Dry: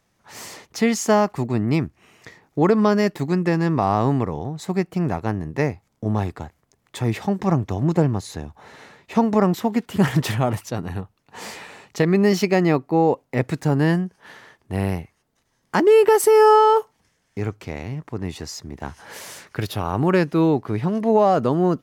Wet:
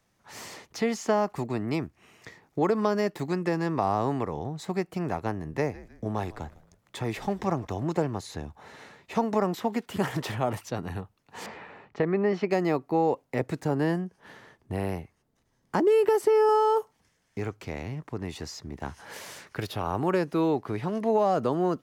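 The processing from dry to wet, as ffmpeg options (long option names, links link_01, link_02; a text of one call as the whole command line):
ffmpeg -i in.wav -filter_complex "[0:a]asettb=1/sr,asplit=3[link_01][link_02][link_03];[link_01]atrim=end=5.354[link_04];[link_02]atrim=start=5.35:end=7.67,asetpts=PTS-STARTPTS,afade=type=in:duration=0.004:curve=qsin,afade=type=out:start_time=2.316:duration=0.004:curve=qsin,asplit=4[link_05][link_06][link_07][link_08];[link_06]adelay=154,afreqshift=-90,volume=-20.5dB[link_09];[link_07]adelay=308,afreqshift=-180,volume=-28.7dB[link_10];[link_08]adelay=462,afreqshift=-270,volume=-36.9dB[link_11];[link_05][link_09][link_10][link_11]amix=inputs=4:normalize=0,atrim=end_sample=102312[link_12];[link_03]atrim=start=7.666[link_13];[link_04][link_12]acrossfade=duration=0.004:curve1=hsin:curve2=qsin[link_14];[link_14][link_13]acrossfade=duration=0.004:curve1=qsin:curve2=hsin,asettb=1/sr,asplit=3[link_15][link_16][link_17];[link_15]atrim=end=11.464[link_18];[link_16]atrim=start=11.46:end=12.51,asetpts=PTS-STARTPTS,afade=type=in:duration=0.004:curve=qsin,afade=type=out:start_time=1.046:duration=0.004:curve=qsin,lowpass=1900[link_19];[link_17]atrim=start=12.506[link_20];[link_18][link_19]acrossfade=duration=0.004:curve1=hsin:curve2=qsin[link_21];[link_21][link_20]acrossfade=duration=0.004:curve1=qsin:curve2=hsin,asettb=1/sr,asplit=3[link_22][link_23][link_24];[link_22]atrim=end=13.404[link_25];[link_23]atrim=start=13.4:end=16.49,asetpts=PTS-STARTPTS,afade=type=in:duration=0.004:curve=qsin,afade=type=out:start_time=3.086:duration=0.004:curve=qsin,tiltshelf=frequency=640:gain=4[link_26];[link_24]atrim=start=16.486[link_27];[link_25][link_26]acrossfade=duration=0.004:curve1=hsin:curve2=qsin[link_28];[link_28][link_27]acrossfade=duration=0.004:curve1=qsin:curve2=hsin,acrossover=split=330|1200|5200[link_29][link_30][link_31][link_32];[link_29]acompressor=threshold=-29dB:ratio=4[link_33];[link_30]acompressor=threshold=-18dB:ratio=4[link_34];[link_31]acompressor=threshold=-34dB:ratio=4[link_35];[link_32]acompressor=threshold=-44dB:ratio=4[link_36];[link_33][link_34][link_35][link_36]amix=inputs=4:normalize=0,volume=-3.5dB" out.wav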